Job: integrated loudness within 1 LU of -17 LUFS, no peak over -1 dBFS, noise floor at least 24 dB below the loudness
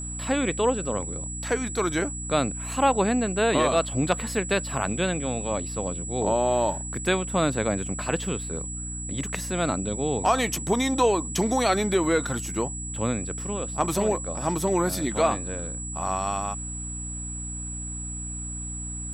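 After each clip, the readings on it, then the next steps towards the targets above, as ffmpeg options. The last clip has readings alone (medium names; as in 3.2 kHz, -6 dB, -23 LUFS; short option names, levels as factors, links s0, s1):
hum 60 Hz; highest harmonic 300 Hz; hum level -34 dBFS; steady tone 7.8 kHz; tone level -34 dBFS; loudness -26.0 LUFS; peak level -9.0 dBFS; loudness target -17.0 LUFS
-> -af "bandreject=f=60:t=h:w=4,bandreject=f=120:t=h:w=4,bandreject=f=180:t=h:w=4,bandreject=f=240:t=h:w=4,bandreject=f=300:t=h:w=4"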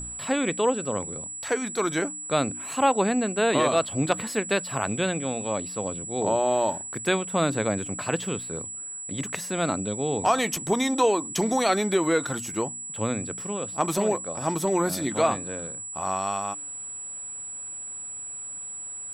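hum not found; steady tone 7.8 kHz; tone level -34 dBFS
-> -af "bandreject=f=7800:w=30"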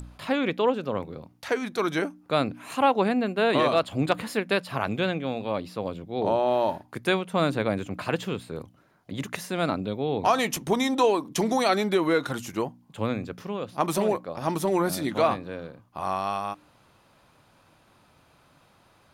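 steady tone not found; loudness -26.5 LUFS; peak level -9.5 dBFS; loudness target -17.0 LUFS
-> -af "volume=2.99,alimiter=limit=0.891:level=0:latency=1"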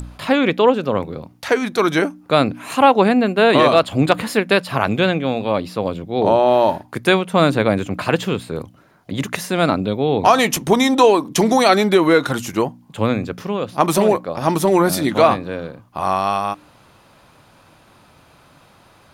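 loudness -17.0 LUFS; peak level -1.0 dBFS; noise floor -51 dBFS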